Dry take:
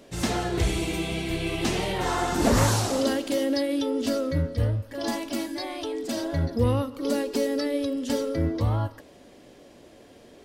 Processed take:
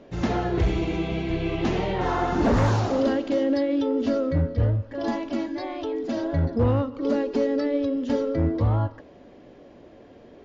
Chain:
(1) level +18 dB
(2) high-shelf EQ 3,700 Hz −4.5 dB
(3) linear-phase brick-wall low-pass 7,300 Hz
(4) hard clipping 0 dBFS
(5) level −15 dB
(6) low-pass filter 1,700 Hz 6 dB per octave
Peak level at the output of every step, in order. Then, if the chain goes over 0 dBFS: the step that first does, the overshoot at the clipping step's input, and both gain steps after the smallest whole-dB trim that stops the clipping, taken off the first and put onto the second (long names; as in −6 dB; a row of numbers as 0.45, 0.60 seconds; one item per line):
+11.0, +10.0, +10.0, 0.0, −15.0, −15.0 dBFS
step 1, 10.0 dB
step 1 +8 dB, step 5 −5 dB